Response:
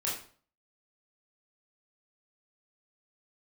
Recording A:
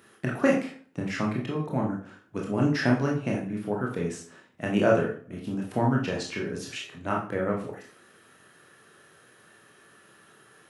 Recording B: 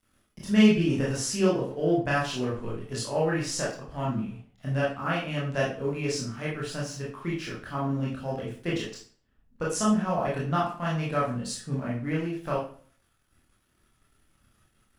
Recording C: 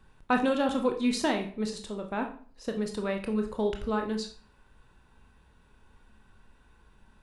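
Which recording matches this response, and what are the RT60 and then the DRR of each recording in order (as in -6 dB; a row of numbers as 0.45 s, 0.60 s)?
B; 0.45 s, 0.45 s, 0.45 s; -2.0 dB, -6.0 dB, 4.0 dB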